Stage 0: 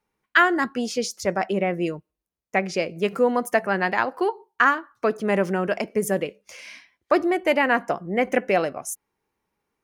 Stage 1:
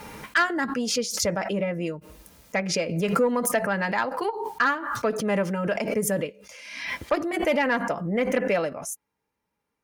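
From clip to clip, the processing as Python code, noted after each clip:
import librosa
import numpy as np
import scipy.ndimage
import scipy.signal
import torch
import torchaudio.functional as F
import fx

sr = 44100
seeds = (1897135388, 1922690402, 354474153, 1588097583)

y = fx.notch_comb(x, sr, f0_hz=370.0)
y = fx.cheby_harmonics(y, sr, harmonics=(5,), levels_db=(-17,), full_scale_db=-4.0)
y = fx.pre_swell(y, sr, db_per_s=50.0)
y = y * 10.0 ** (-6.0 / 20.0)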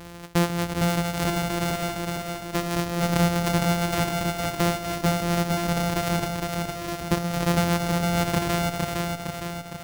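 y = np.r_[np.sort(x[:len(x) // 256 * 256].reshape(-1, 256), axis=1).ravel(), x[len(x) // 256 * 256:]]
y = fx.echo_feedback(y, sr, ms=460, feedback_pct=57, wet_db=-3)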